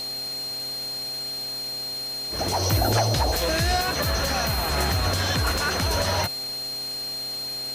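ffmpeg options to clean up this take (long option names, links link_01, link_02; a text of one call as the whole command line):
ffmpeg -i in.wav -af "bandreject=frequency=130.9:width_type=h:width=4,bandreject=frequency=261.8:width_type=h:width=4,bandreject=frequency=392.7:width_type=h:width=4,bandreject=frequency=523.6:width_type=h:width=4,bandreject=frequency=654.5:width_type=h:width=4,bandreject=frequency=785.4:width_type=h:width=4,bandreject=frequency=4200:width=30,afwtdn=0.01" out.wav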